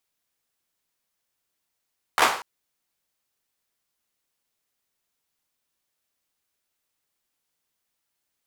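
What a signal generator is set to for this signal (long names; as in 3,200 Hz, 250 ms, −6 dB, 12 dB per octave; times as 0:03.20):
synth clap length 0.24 s, bursts 4, apart 13 ms, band 1,000 Hz, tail 0.46 s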